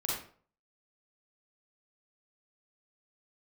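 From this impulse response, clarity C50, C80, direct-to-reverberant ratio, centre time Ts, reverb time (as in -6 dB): -0.5 dB, 5.0 dB, -5.0 dB, 53 ms, 0.45 s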